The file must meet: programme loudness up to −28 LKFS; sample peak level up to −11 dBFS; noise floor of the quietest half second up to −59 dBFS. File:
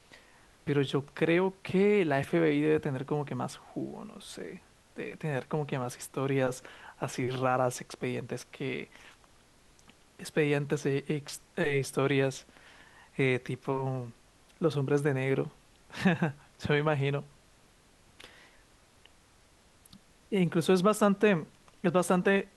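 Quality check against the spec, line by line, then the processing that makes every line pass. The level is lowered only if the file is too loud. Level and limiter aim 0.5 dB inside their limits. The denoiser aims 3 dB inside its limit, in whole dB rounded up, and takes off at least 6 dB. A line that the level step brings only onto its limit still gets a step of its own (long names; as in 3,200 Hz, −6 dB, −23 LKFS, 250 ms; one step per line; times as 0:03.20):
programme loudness −30.0 LKFS: in spec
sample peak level −12.0 dBFS: in spec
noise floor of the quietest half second −62 dBFS: in spec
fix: no processing needed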